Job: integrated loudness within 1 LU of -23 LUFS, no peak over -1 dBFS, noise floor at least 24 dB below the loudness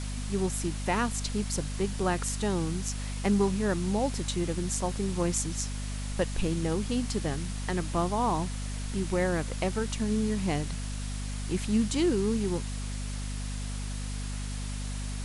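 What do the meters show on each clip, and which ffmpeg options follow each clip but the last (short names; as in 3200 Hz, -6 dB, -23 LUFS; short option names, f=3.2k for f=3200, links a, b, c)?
hum 50 Hz; harmonics up to 250 Hz; hum level -32 dBFS; noise floor -35 dBFS; noise floor target -55 dBFS; loudness -30.5 LUFS; peak -13.0 dBFS; loudness target -23.0 LUFS
-> -af "bandreject=f=50:t=h:w=6,bandreject=f=100:t=h:w=6,bandreject=f=150:t=h:w=6,bandreject=f=200:t=h:w=6,bandreject=f=250:t=h:w=6"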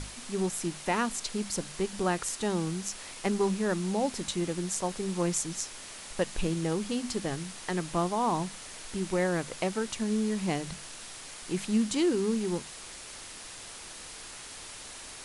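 hum none; noise floor -45 dBFS; noise floor target -56 dBFS
-> -af "afftdn=nr=11:nf=-45"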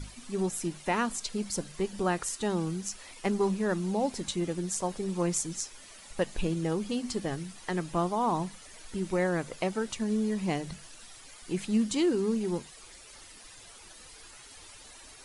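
noise floor -51 dBFS; noise floor target -56 dBFS
-> -af "afftdn=nr=6:nf=-51"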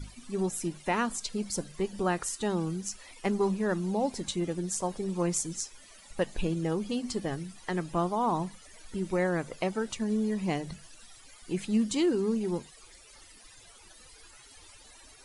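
noise floor -54 dBFS; noise floor target -56 dBFS
-> -af "afftdn=nr=6:nf=-54"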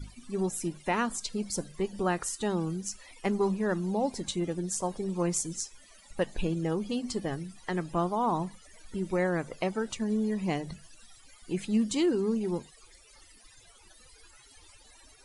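noise floor -57 dBFS; loudness -31.5 LUFS; peak -14.0 dBFS; loudness target -23.0 LUFS
-> -af "volume=8.5dB"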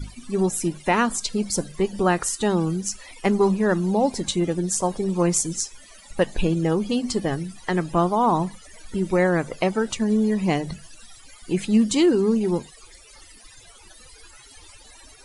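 loudness -23.0 LUFS; peak -5.5 dBFS; noise floor -49 dBFS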